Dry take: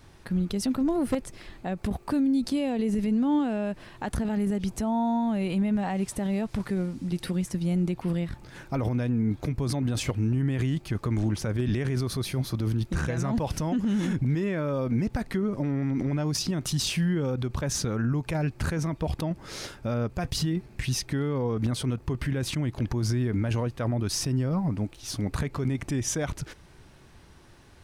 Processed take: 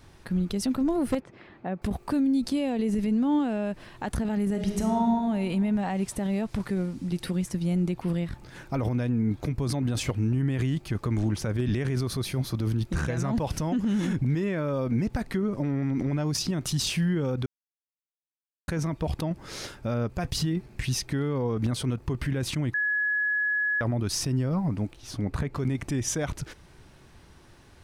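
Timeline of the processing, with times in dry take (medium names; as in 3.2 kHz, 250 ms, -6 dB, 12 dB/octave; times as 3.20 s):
1.20–1.82 s: band-pass 130–2100 Hz
4.49–5.02 s: reverb throw, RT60 1.7 s, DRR 2 dB
17.46–18.68 s: mute
22.74–23.81 s: bleep 1.69 kHz -23 dBFS
24.93–25.55 s: treble shelf 3.1 kHz -8.5 dB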